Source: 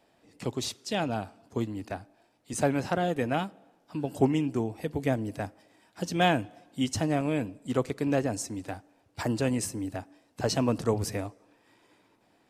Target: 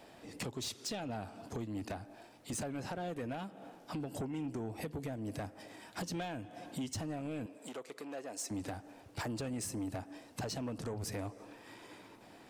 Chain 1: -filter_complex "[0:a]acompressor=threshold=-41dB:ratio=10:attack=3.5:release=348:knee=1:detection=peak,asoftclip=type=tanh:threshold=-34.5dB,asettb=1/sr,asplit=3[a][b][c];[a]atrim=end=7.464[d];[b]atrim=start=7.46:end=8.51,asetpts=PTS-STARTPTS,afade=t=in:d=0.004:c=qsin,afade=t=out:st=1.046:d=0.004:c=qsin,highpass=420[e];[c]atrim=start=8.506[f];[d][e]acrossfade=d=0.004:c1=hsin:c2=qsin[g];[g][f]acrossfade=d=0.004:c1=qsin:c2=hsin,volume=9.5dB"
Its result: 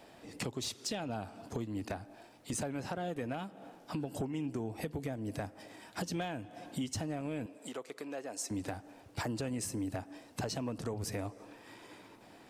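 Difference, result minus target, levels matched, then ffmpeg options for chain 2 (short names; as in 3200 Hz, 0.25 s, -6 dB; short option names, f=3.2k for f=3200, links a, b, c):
soft clip: distortion -10 dB
-filter_complex "[0:a]acompressor=threshold=-41dB:ratio=10:attack=3.5:release=348:knee=1:detection=peak,asoftclip=type=tanh:threshold=-42.5dB,asettb=1/sr,asplit=3[a][b][c];[a]atrim=end=7.464[d];[b]atrim=start=7.46:end=8.51,asetpts=PTS-STARTPTS,afade=t=in:d=0.004:c=qsin,afade=t=out:st=1.046:d=0.004:c=qsin,highpass=420[e];[c]atrim=start=8.506[f];[d][e]acrossfade=d=0.004:c1=hsin:c2=qsin[g];[g][f]acrossfade=d=0.004:c1=qsin:c2=hsin,volume=9.5dB"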